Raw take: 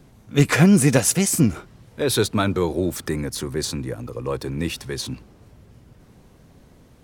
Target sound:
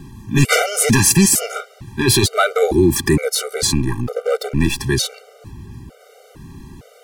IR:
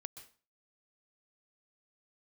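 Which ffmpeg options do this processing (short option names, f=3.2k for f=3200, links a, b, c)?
-filter_complex "[0:a]asettb=1/sr,asplit=3[a][b][c];[a]atrim=end=3.734[d];[b]atrim=start=3.73:end=4.8,asetpts=PTS-STARTPTS,afade=t=in:d=0.004:c=qsin,afade=t=out:st=1.066:d=0.004:c=qsin,aeval=exprs='if(lt(val(0),0),0.251*val(0),val(0))':c=same[e];[c]atrim=start=4.796[f];[d][e]acrossfade=d=0.004:c1=hsin:c2=qsin[g];[g][f]acrossfade=d=0.004:c1=qsin:c2=hsin,apsyclip=19.5dB,afftfilt=real='re*gt(sin(2*PI*1.1*pts/sr)*(1-2*mod(floor(b*sr/1024/390),2)),0)':imag='im*gt(sin(2*PI*1.1*pts/sr)*(1-2*mod(floor(b*sr/1024/390),2)),0)':win_size=1024:overlap=0.75,volume=-5.5dB"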